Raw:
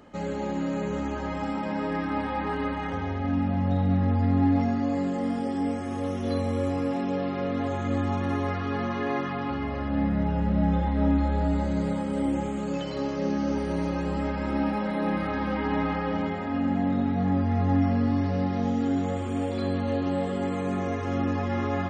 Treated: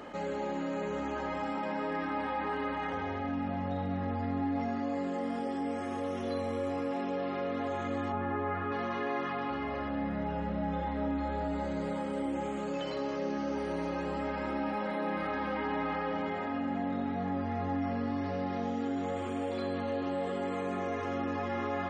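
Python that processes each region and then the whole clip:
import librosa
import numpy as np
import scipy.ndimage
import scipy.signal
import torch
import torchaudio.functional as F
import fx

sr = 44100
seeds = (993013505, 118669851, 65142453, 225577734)

y = fx.chain(x, sr, fx.lowpass(hz=1800.0, slope=12),
    fx.doubler(ms=12.0, db=-4.0), at=(8.12, 8.72))
y = fx.bass_treble(y, sr, bass_db=-11, treble_db=-5)
y = fx.env_flatten(y, sr, amount_pct=50)
y = y * 10.0 ** (-6.0 / 20.0)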